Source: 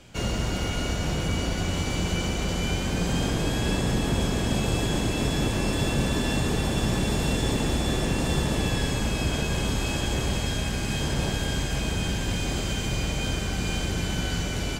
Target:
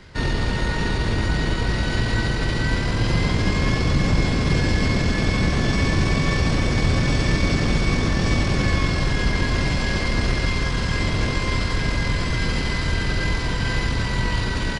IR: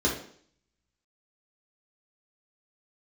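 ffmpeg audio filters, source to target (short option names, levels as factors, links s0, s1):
-af "asetrate=28595,aresample=44100,atempo=1.54221,volume=2"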